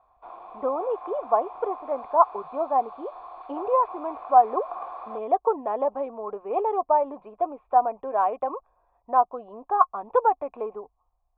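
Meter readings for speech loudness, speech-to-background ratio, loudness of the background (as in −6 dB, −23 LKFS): −25.5 LKFS, 14.5 dB, −40.0 LKFS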